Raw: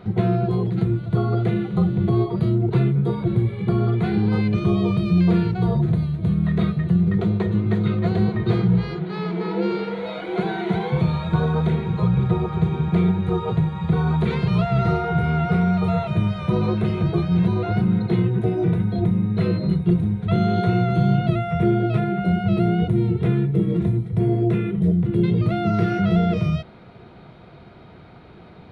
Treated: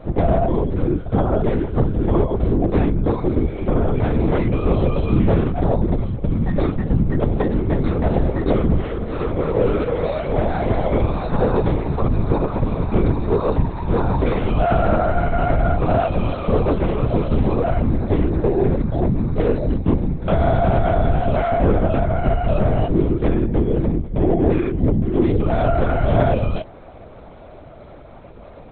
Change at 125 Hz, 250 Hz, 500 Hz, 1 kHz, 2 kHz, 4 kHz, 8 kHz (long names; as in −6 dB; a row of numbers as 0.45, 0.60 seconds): −1.0 dB, −0.5 dB, +6.0 dB, +5.0 dB, +1.5 dB, −2.5 dB, can't be measured